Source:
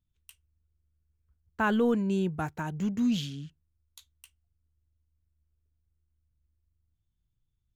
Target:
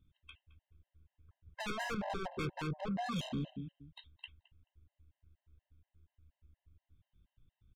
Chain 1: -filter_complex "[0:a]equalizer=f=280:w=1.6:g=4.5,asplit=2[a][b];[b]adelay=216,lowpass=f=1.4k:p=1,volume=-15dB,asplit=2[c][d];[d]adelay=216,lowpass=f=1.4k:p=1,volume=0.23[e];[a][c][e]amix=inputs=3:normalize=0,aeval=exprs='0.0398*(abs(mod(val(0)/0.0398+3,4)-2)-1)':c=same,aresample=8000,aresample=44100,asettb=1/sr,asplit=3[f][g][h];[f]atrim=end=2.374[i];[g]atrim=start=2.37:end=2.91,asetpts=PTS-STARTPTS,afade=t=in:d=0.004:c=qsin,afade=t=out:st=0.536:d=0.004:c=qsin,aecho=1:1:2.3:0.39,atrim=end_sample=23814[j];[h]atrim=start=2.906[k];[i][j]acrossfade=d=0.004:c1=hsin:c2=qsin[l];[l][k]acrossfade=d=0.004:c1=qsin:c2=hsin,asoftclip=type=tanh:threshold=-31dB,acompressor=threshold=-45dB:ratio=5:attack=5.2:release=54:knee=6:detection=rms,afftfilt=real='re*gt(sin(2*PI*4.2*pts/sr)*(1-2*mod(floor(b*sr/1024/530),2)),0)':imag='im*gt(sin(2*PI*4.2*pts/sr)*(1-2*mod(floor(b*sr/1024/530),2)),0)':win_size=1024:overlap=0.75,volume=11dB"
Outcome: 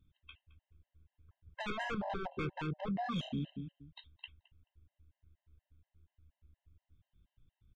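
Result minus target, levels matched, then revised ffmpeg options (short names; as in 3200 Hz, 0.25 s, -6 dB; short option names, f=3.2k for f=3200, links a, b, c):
soft clip: distortion -9 dB
-filter_complex "[0:a]equalizer=f=280:w=1.6:g=4.5,asplit=2[a][b];[b]adelay=216,lowpass=f=1.4k:p=1,volume=-15dB,asplit=2[c][d];[d]adelay=216,lowpass=f=1.4k:p=1,volume=0.23[e];[a][c][e]amix=inputs=3:normalize=0,aeval=exprs='0.0398*(abs(mod(val(0)/0.0398+3,4)-2)-1)':c=same,aresample=8000,aresample=44100,asettb=1/sr,asplit=3[f][g][h];[f]atrim=end=2.374[i];[g]atrim=start=2.37:end=2.91,asetpts=PTS-STARTPTS,afade=t=in:d=0.004:c=qsin,afade=t=out:st=0.536:d=0.004:c=qsin,aecho=1:1:2.3:0.39,atrim=end_sample=23814[j];[h]atrim=start=2.906[k];[i][j]acrossfade=d=0.004:c1=hsin:c2=qsin[l];[l][k]acrossfade=d=0.004:c1=qsin:c2=hsin,asoftclip=type=tanh:threshold=-40dB,acompressor=threshold=-45dB:ratio=5:attack=5.2:release=54:knee=6:detection=rms,afftfilt=real='re*gt(sin(2*PI*4.2*pts/sr)*(1-2*mod(floor(b*sr/1024/530),2)),0)':imag='im*gt(sin(2*PI*4.2*pts/sr)*(1-2*mod(floor(b*sr/1024/530),2)),0)':win_size=1024:overlap=0.75,volume=11dB"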